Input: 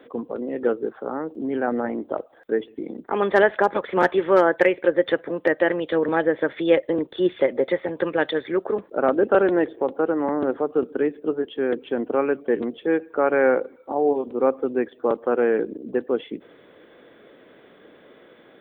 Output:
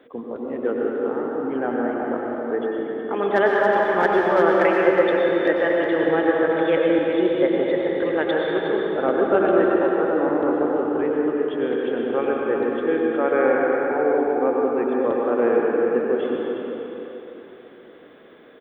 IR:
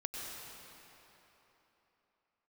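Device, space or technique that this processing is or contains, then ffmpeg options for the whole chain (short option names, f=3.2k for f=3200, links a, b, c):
cave: -filter_complex "[0:a]aecho=1:1:365:0.376[a];[1:a]atrim=start_sample=2205[b];[a][b]afir=irnorm=-1:irlink=0"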